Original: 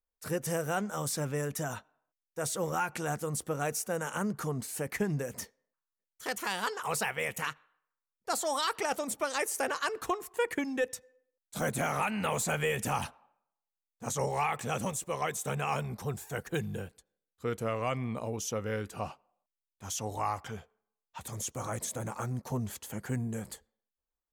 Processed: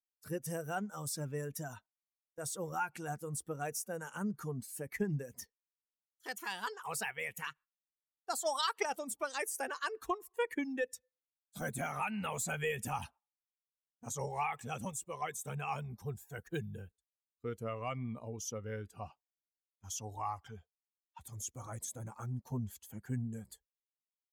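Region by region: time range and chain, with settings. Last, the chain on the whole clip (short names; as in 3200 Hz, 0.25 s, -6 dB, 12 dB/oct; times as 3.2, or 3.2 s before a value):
8.37–8.85 bell 85 Hz -11.5 dB 2.7 oct + transient shaper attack +11 dB, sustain -1 dB
whole clip: per-bin expansion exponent 1.5; gate -57 dBFS, range -11 dB; bell 540 Hz -3.5 dB 0.21 oct; gain -2 dB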